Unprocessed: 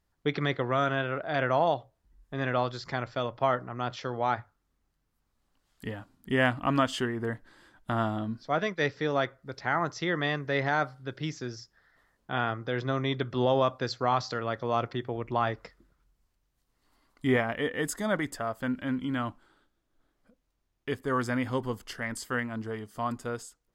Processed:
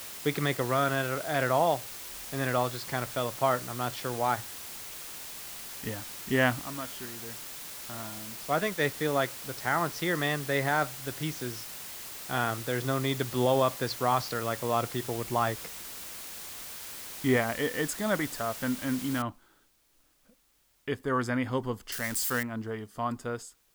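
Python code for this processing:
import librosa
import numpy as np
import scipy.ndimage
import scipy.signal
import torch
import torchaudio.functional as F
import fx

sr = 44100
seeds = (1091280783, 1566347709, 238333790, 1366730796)

y = fx.comb_fb(x, sr, f0_hz=200.0, decay_s=0.82, harmonics='odd', damping=0.0, mix_pct=80, at=(6.61, 8.4))
y = fx.noise_floor_step(y, sr, seeds[0], at_s=19.22, before_db=-42, after_db=-69, tilt_db=0.0)
y = fx.crossing_spikes(y, sr, level_db=-26.5, at=(21.92, 22.43))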